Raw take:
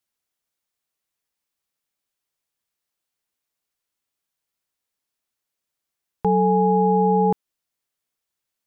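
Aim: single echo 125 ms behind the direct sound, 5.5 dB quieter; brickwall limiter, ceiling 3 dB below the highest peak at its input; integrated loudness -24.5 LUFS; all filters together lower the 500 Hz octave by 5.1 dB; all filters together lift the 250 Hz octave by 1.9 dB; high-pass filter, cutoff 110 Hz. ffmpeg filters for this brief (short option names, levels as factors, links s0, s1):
-af "highpass=110,equalizer=f=250:t=o:g=5.5,equalizer=f=500:t=o:g=-7.5,alimiter=limit=0.2:level=0:latency=1,aecho=1:1:125:0.531,volume=0.596"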